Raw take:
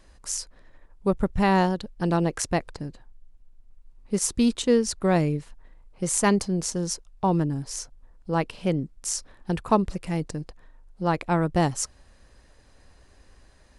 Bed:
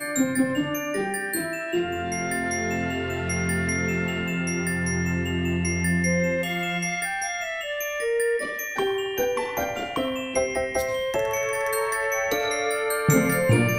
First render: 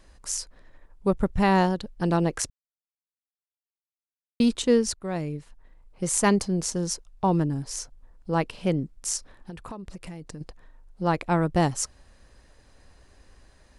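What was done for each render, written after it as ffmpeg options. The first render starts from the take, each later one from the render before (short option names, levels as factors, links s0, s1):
-filter_complex "[0:a]asettb=1/sr,asplit=3[s0][s1][s2];[s0]atrim=end=9.174[s3];[s1]atrim=start=9.17:end=10.41,asetpts=PTS-STARTPTS,afade=t=in:d=0.004:c=qsin,afade=t=out:st=1.236:d=0.004:c=qsin,acompressor=threshold=0.0178:ratio=8:attack=3.2:release=140:knee=1:detection=peak[s4];[s2]atrim=start=10.406[s5];[s3][s4]acrossfade=d=0.004:c1=hsin:c2=qsin[s6];[s6][s5]acrossfade=d=0.004:c1=qsin:c2=hsin,asplit=4[s7][s8][s9][s10];[s7]atrim=end=2.5,asetpts=PTS-STARTPTS,afade=t=out:st=2.496:d=0.004:c=hsin[s11];[s8]atrim=start=2.5:end=4.4,asetpts=PTS-STARTPTS,volume=0[s12];[s9]atrim=start=4.4:end=4.94,asetpts=PTS-STARTPTS,afade=t=in:d=0.004:c=hsin,afade=t=out:st=0.536:d=0.004:c=hsin:silence=0.237137[s13];[s10]atrim=start=4.94,asetpts=PTS-STARTPTS,afade=t=in:d=1.23:silence=0.237137[s14];[s11][s12][s13][s14]concat=n=4:v=0:a=1"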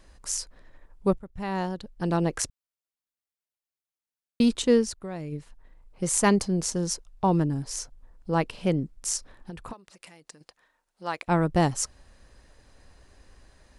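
-filter_complex "[0:a]asplit=3[s0][s1][s2];[s0]afade=t=out:st=4.84:d=0.02[s3];[s1]acompressor=threshold=0.0251:ratio=3:attack=3.2:release=140:knee=1:detection=peak,afade=t=in:st=4.84:d=0.02,afade=t=out:st=5.31:d=0.02[s4];[s2]afade=t=in:st=5.31:d=0.02[s5];[s3][s4][s5]amix=inputs=3:normalize=0,asettb=1/sr,asplit=3[s6][s7][s8];[s6]atrim=end=9.734[s9];[s7]atrim=start=9.73:end=11.28,asetpts=PTS-STARTPTS,afade=t=in:d=0.004:c=qsin,afade=t=out:st=1.546:d=0.004:c=qsin,highpass=f=1400:p=1[s10];[s8]atrim=start=11.276[s11];[s9][s10]acrossfade=d=0.004:c1=hsin:c2=qsin[s12];[s12][s11]acrossfade=d=0.004:c1=qsin:c2=hsin,asplit=2[s13][s14];[s13]atrim=end=1.19,asetpts=PTS-STARTPTS,afade=t=out:st=1.186:d=0.004:c=hsin:silence=0.0749894[s15];[s14]atrim=start=1.19,asetpts=PTS-STARTPTS,afade=t=in:d=1.24:silence=0.0749894[s16];[s15][s16]concat=n=2:v=0:a=1"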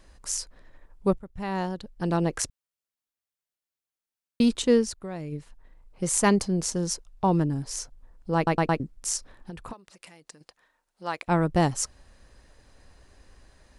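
-filter_complex "[0:a]asplit=5[s0][s1][s2][s3][s4];[s0]atrim=end=8.472[s5];[s1]atrim=start=8.358:end=8.472[s6];[s2]atrim=start=8.358:end=8.472[s7];[s3]atrim=start=8.358:end=8.472[s8];[s4]atrim=start=8.798[s9];[s5][s6]acrossfade=d=0.004:c1=hsin:c2=hsin[s10];[s10][s7]acrossfade=d=0.004:c1=hsin:c2=hsin[s11];[s11][s8]acrossfade=d=0.004:c1=hsin:c2=hsin[s12];[s12][s9]acrossfade=d=0.004:c1=hsin:c2=hsin"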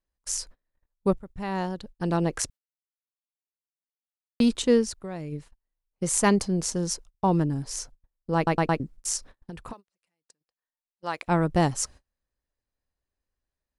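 -af "agate=range=0.0251:threshold=0.00708:ratio=16:detection=peak"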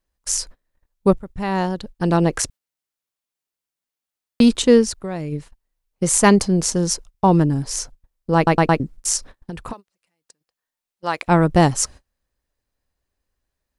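-af "volume=2.51,alimiter=limit=0.794:level=0:latency=1"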